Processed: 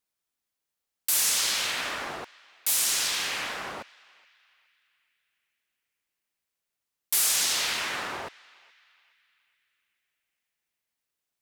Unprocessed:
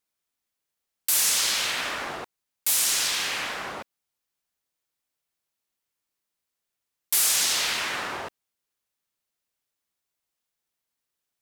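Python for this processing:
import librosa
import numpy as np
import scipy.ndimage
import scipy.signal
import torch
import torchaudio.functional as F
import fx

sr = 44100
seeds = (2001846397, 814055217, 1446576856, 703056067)

y = fx.echo_banded(x, sr, ms=422, feedback_pct=48, hz=2300.0, wet_db=-22.0)
y = y * 10.0 ** (-2.0 / 20.0)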